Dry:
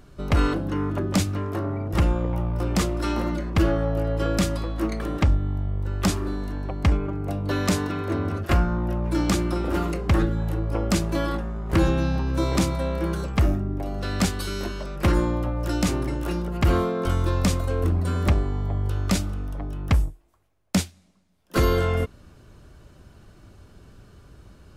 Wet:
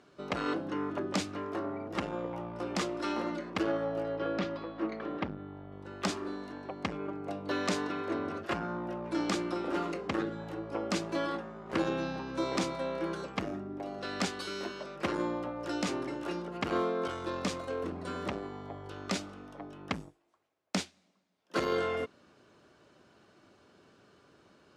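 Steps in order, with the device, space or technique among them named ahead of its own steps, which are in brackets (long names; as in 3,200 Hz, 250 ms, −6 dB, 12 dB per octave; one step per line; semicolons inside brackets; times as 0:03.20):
public-address speaker with an overloaded transformer (saturating transformer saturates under 120 Hz; band-pass filter 280–6,000 Hz)
0:04.16–0:05.72: high-frequency loss of the air 230 metres
level −4.5 dB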